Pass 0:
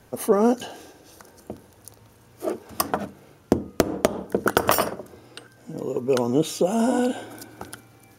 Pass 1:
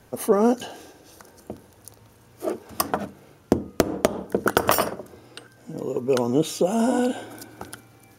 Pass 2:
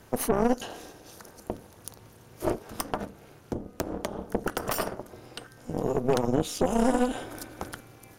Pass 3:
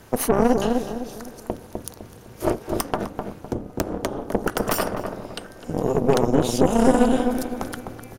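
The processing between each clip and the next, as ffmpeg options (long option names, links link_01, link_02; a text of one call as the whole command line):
ffmpeg -i in.wav -af anull out.wav
ffmpeg -i in.wav -af "alimiter=limit=-15dB:level=0:latency=1:release=445,tremolo=f=260:d=0.857,aeval=exprs='(tanh(14.1*val(0)+0.65)-tanh(0.65))/14.1':channel_layout=same,volume=8dB" out.wav
ffmpeg -i in.wav -filter_complex "[0:a]asplit=2[link_01][link_02];[link_02]adelay=254,lowpass=frequency=840:poles=1,volume=-3dB,asplit=2[link_03][link_04];[link_04]adelay=254,lowpass=frequency=840:poles=1,volume=0.42,asplit=2[link_05][link_06];[link_06]adelay=254,lowpass=frequency=840:poles=1,volume=0.42,asplit=2[link_07][link_08];[link_08]adelay=254,lowpass=frequency=840:poles=1,volume=0.42,asplit=2[link_09][link_10];[link_10]adelay=254,lowpass=frequency=840:poles=1,volume=0.42[link_11];[link_01][link_03][link_05][link_07][link_09][link_11]amix=inputs=6:normalize=0,volume=5.5dB" out.wav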